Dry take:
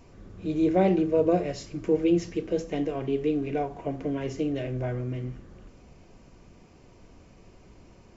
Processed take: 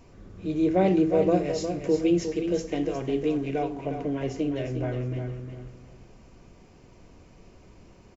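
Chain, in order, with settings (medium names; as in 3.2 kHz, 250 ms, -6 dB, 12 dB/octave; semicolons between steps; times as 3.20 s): 0.86–3.63 s: treble shelf 5.4 kHz +7.5 dB; feedback delay 358 ms, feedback 25%, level -8 dB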